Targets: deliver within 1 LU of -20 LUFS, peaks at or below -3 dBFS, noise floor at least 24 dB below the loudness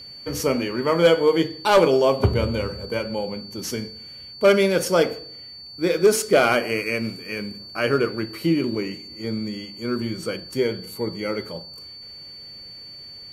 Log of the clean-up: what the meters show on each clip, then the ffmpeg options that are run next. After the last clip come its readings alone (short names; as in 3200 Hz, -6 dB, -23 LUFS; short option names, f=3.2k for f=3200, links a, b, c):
steady tone 4500 Hz; tone level -38 dBFS; loudness -22.5 LUFS; peak -7.0 dBFS; loudness target -20.0 LUFS
-> -af "bandreject=f=4.5k:w=30"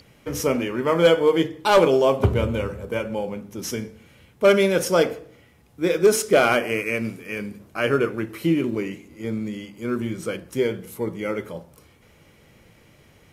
steady tone none; loudness -22.5 LUFS; peak -7.0 dBFS; loudness target -20.0 LUFS
-> -af "volume=2.5dB"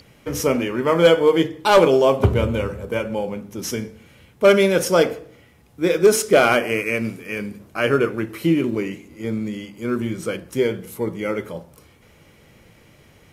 loudness -20.0 LUFS; peak -4.5 dBFS; noise floor -52 dBFS